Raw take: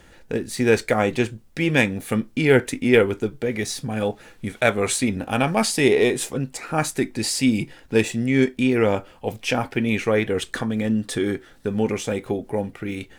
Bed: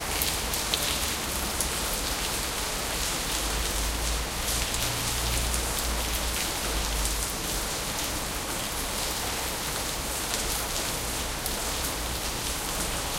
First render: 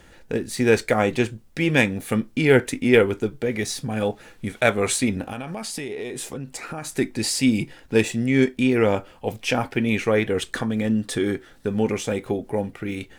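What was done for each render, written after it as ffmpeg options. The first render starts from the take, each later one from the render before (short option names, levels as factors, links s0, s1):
-filter_complex "[0:a]asettb=1/sr,asplit=3[s0][s1][s2];[s0]atrim=end=5.214[s3];[s1]atrim=start=5.21:end=6.98,asetpts=PTS-STARTPTS,afade=t=in:d=0.004:c=qsin,afade=t=out:st=1.766:d=0.004:c=qsin,acompressor=threshold=0.0447:ratio=16:attack=3.2:release=140:knee=1:detection=peak[s4];[s2]atrim=start=6.976[s5];[s3][s4]acrossfade=d=0.004:c1=hsin:c2=qsin[s6];[s6][s5]acrossfade=d=0.004:c1=qsin:c2=hsin"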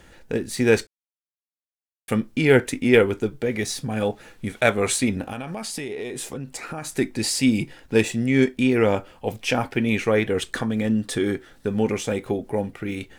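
-filter_complex "[0:a]asplit=3[s0][s1][s2];[s0]atrim=end=0.87,asetpts=PTS-STARTPTS,afade=t=out:st=0.866:d=0.004:c=hsin[s3];[s1]atrim=start=0.87:end=2.08,asetpts=PTS-STARTPTS,volume=0[s4];[s2]atrim=start=2.08,asetpts=PTS-STARTPTS,afade=t=in:d=0.004:c=hsin[s5];[s3][s4][s5]concat=n=3:v=0:a=1"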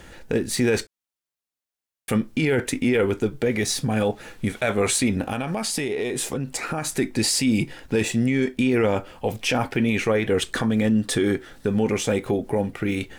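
-filter_complex "[0:a]asplit=2[s0][s1];[s1]acompressor=threshold=0.0447:ratio=6,volume=0.891[s2];[s0][s2]amix=inputs=2:normalize=0,alimiter=limit=0.237:level=0:latency=1:release=16"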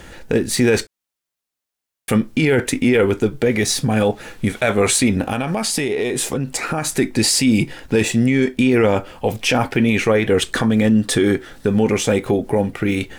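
-af "volume=1.88"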